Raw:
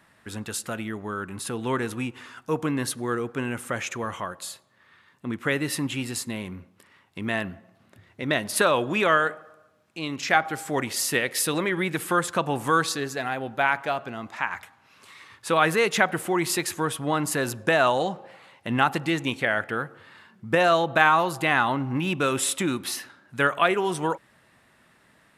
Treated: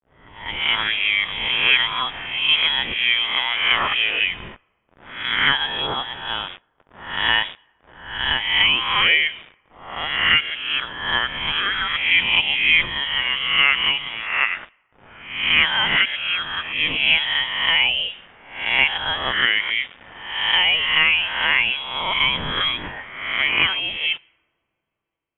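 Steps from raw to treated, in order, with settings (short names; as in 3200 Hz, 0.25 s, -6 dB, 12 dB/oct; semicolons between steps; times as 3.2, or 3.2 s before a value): spectral swells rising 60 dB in 0.93 s; HPF 360 Hz 12 dB/oct; bit-crush 7-bit; AGC gain up to 16 dB; inverted band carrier 3600 Hz; on a send at -20.5 dB: reverb, pre-delay 3 ms; on the sum: low-pass opened by the level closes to 820 Hz, open at -16 dBFS; gain -2 dB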